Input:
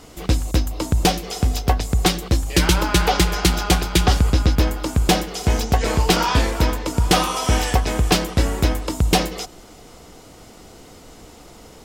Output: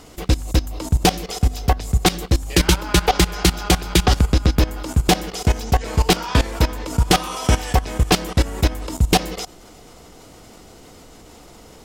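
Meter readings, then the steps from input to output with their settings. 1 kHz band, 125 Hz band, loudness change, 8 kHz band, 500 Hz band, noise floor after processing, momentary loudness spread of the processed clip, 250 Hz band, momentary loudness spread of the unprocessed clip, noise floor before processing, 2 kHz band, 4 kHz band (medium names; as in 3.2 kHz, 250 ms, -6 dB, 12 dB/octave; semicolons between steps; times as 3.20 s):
-0.5 dB, +0.5 dB, 0.0 dB, 0.0 dB, -0.5 dB, -45 dBFS, 5 LU, 0.0 dB, 5 LU, -44 dBFS, -0.5 dB, 0.0 dB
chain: level held to a coarse grid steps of 16 dB; trim +4 dB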